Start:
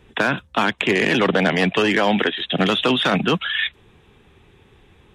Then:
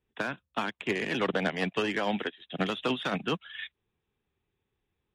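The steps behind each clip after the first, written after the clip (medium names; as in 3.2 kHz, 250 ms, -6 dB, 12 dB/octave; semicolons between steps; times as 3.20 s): upward expansion 2.5:1, over -29 dBFS; trim -9 dB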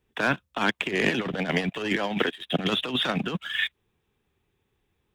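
waveshaping leveller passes 1; compressor with a negative ratio -30 dBFS, ratio -0.5; trim +5.5 dB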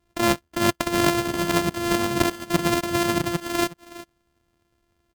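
sorted samples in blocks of 128 samples; delay 368 ms -17 dB; trim +4 dB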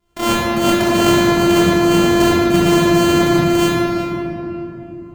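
simulated room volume 180 m³, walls hard, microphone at 1.3 m; trim -1.5 dB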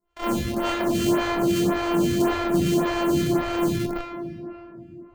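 in parallel at -5.5 dB: Schmitt trigger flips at -13 dBFS; on the sum: lamp-driven phase shifter 1.8 Hz; trim -8.5 dB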